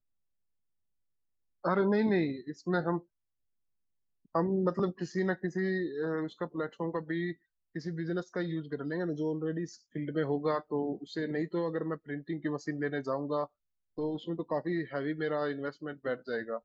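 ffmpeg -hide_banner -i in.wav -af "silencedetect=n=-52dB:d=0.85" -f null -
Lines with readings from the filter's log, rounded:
silence_start: 0.00
silence_end: 1.64 | silence_duration: 1.64
silence_start: 3.02
silence_end: 4.35 | silence_duration: 1.32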